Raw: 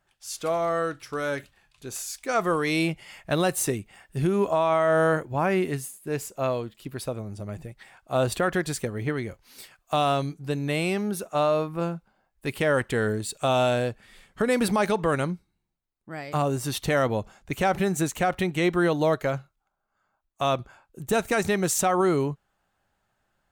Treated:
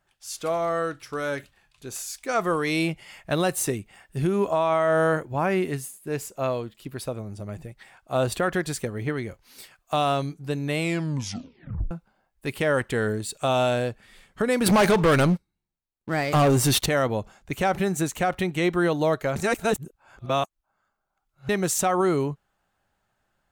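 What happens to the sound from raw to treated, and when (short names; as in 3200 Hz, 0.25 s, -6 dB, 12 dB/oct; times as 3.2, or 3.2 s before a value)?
10.8 tape stop 1.11 s
14.66–16.86 sample leveller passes 3
19.36–21.49 reverse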